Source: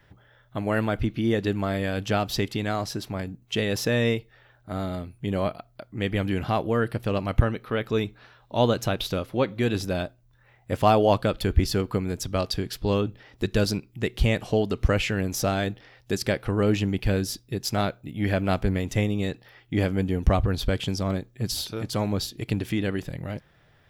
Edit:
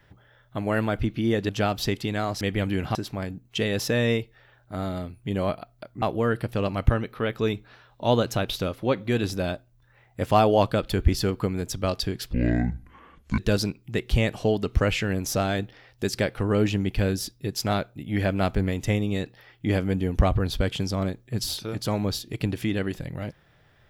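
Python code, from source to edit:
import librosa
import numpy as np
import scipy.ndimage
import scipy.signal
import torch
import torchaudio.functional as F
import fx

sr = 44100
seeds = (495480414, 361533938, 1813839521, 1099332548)

y = fx.edit(x, sr, fx.cut(start_s=1.49, length_s=0.51),
    fx.move(start_s=5.99, length_s=0.54, to_s=2.92),
    fx.speed_span(start_s=12.84, length_s=0.62, speed=0.59), tone=tone)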